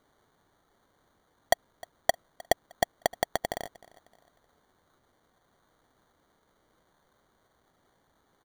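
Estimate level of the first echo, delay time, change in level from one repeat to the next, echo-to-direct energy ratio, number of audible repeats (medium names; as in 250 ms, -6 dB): -22.0 dB, 308 ms, -8.5 dB, -21.5 dB, 2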